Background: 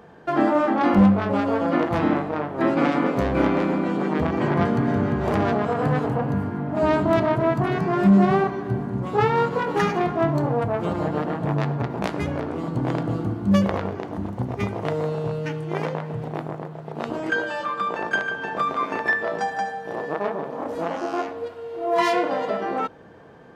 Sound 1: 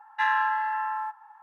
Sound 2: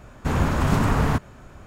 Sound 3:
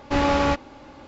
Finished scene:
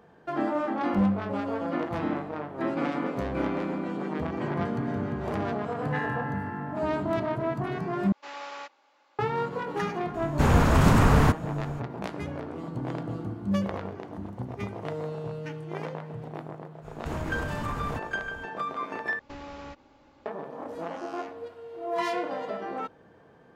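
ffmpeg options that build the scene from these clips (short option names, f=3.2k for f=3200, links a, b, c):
-filter_complex "[3:a]asplit=2[a][b];[2:a]asplit=2[c][d];[0:a]volume=-8.5dB[e];[1:a]equalizer=f=2k:w=2:g=6.5[f];[a]highpass=790[g];[c]acontrast=59[h];[d]acompressor=threshold=-27dB:ratio=6:attack=3.2:release=140:knee=1:detection=peak[i];[b]acompressor=threshold=-30dB:ratio=2.5:attack=14:release=152:knee=1:detection=peak[j];[e]asplit=3[k][l][m];[k]atrim=end=8.124[n];[g]atrim=end=1.07,asetpts=PTS-STARTPTS,volume=-14.5dB[o];[l]atrim=start=9.186:end=19.194[p];[j]atrim=end=1.07,asetpts=PTS-STARTPTS,volume=-13.5dB[q];[m]atrim=start=20.256[r];[f]atrim=end=1.42,asetpts=PTS-STARTPTS,volume=-11.5dB,afade=t=in:d=0.004:c=hsin,afade=t=out:st=1.416:d=0.004:c=hsin,adelay=5740[s];[h]atrim=end=1.66,asetpts=PTS-STARTPTS,volume=-4.5dB,afade=t=in:d=0.004:c=hsin,afade=t=out:st=1.656:d=0.004:c=hsin,adelay=10140[t];[i]atrim=end=1.66,asetpts=PTS-STARTPTS,volume=-3dB,afade=t=in:d=0.05,afade=t=out:st=1.61:d=0.05,adelay=16810[u];[n][o]acrossfade=d=0.004:c1=hsin:c2=hsin[v];[v][p]acrossfade=d=0.004:c1=hsin:c2=hsin[w];[w][q]acrossfade=d=0.004:c1=hsin:c2=hsin[x];[x][r]acrossfade=d=0.004:c1=hsin:c2=hsin[y];[y][s][t][u]amix=inputs=4:normalize=0"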